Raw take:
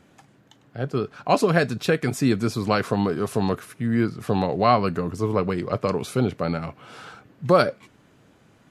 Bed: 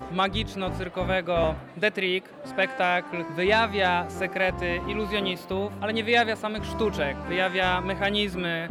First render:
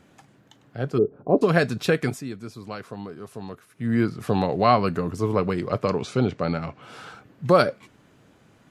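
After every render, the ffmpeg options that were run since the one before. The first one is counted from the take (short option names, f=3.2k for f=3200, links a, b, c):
-filter_complex "[0:a]asplit=3[a][b][c];[a]afade=t=out:st=0.97:d=0.02[d];[b]lowpass=f=420:t=q:w=2.8,afade=t=in:st=0.97:d=0.02,afade=t=out:st=1.41:d=0.02[e];[c]afade=t=in:st=1.41:d=0.02[f];[d][e][f]amix=inputs=3:normalize=0,asettb=1/sr,asplit=3[g][h][i];[g]atrim=end=5.844[j];[h]atrim=start=5.84:end=6.82,asetpts=PTS-STARTPTS,afade=t=in:d=0.004:c=qsin,afade=t=out:st=0.976:d=0.004:c=qsin,lowpass=f=7.4k:w=0.5412,lowpass=f=7.4k:w=1.3066[k];[i]atrim=start=6.816[l];[j][k]acrossfade=d=0.004:c1=hsin:c2=qsin[m];[m][l]acrossfade=d=0.004:c1=qsin:c2=hsin,asplit=3[n][o][p];[n]atrim=end=2.23,asetpts=PTS-STARTPTS,afade=t=out:st=2.05:d=0.18:silence=0.211349[q];[o]atrim=start=2.23:end=3.72,asetpts=PTS-STARTPTS,volume=-13.5dB[r];[p]atrim=start=3.72,asetpts=PTS-STARTPTS,afade=t=in:d=0.18:silence=0.211349[s];[q][r][s]concat=n=3:v=0:a=1"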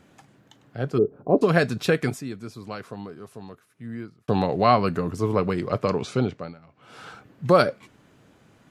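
-filter_complex "[0:a]asplit=4[a][b][c][d];[a]atrim=end=4.28,asetpts=PTS-STARTPTS,afade=t=out:st=2.87:d=1.41[e];[b]atrim=start=4.28:end=6.55,asetpts=PTS-STARTPTS,afade=t=in:d=0.004:c=hsin,afade=t=out:st=1.87:d=0.4:silence=0.0891251[f];[c]atrim=start=6.55:end=6.69,asetpts=PTS-STARTPTS,volume=-21dB[g];[d]atrim=start=6.69,asetpts=PTS-STARTPTS,afade=t=in:d=0.4:silence=0.0891251[h];[e][f][g][h]concat=n=4:v=0:a=1"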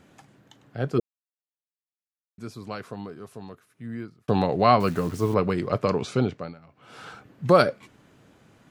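-filter_complex "[0:a]asettb=1/sr,asplit=3[a][b][c];[a]atrim=end=4.804[d];[b]atrim=start=4.8:end=5.34,asetpts=PTS-STARTPTS,afade=t=in:d=0.004:c=qsin,afade=t=out:st=0.536:d=0.004:c=qsin,acrusher=bits=8:dc=4:mix=0:aa=0.000001[e];[c]atrim=start=5.336[f];[d][e]acrossfade=d=0.004:c1=hsin:c2=qsin[g];[g][f]acrossfade=d=0.004:c1=qsin:c2=hsin,asplit=3[h][i][j];[h]atrim=end=1,asetpts=PTS-STARTPTS,afade=t=out:st=0.996:d=0.004:c=hsin[k];[i]atrim=start=1:end=2.38,asetpts=PTS-STARTPTS,volume=0[l];[j]atrim=start=2.38,asetpts=PTS-STARTPTS,afade=t=in:d=0.004:c=hsin[m];[k][l][m]concat=n=3:v=0:a=1"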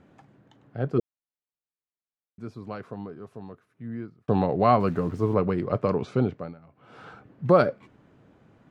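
-af "lowpass=f=1.2k:p=1"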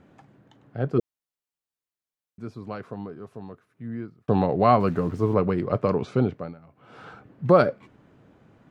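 -af "volume=1.5dB"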